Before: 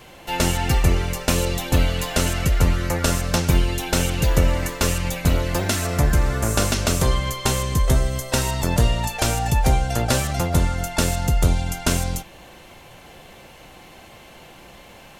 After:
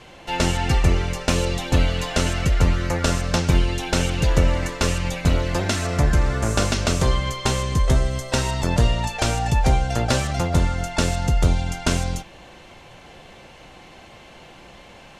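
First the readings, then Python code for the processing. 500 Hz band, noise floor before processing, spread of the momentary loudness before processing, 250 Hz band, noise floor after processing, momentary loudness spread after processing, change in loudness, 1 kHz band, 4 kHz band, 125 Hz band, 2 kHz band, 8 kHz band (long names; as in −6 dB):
0.0 dB, −45 dBFS, 3 LU, 0.0 dB, −45 dBFS, 3 LU, −0.5 dB, 0.0 dB, −0.5 dB, 0.0 dB, 0.0 dB, −3.5 dB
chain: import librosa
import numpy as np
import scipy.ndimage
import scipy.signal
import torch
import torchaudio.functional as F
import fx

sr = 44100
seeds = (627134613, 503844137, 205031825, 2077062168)

y = scipy.signal.sosfilt(scipy.signal.butter(2, 7000.0, 'lowpass', fs=sr, output='sos'), x)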